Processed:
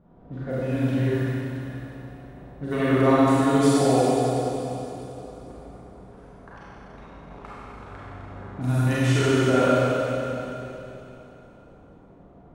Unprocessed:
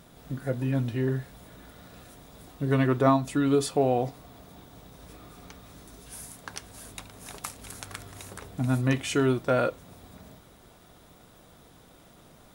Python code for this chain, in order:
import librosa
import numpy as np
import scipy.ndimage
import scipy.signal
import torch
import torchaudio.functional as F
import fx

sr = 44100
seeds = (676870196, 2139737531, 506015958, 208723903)

y = fx.env_lowpass(x, sr, base_hz=700.0, full_db=-23.0)
y = fx.rev_schroeder(y, sr, rt60_s=3.3, comb_ms=32, drr_db=-9.5)
y = y * 10.0 ** (-4.0 / 20.0)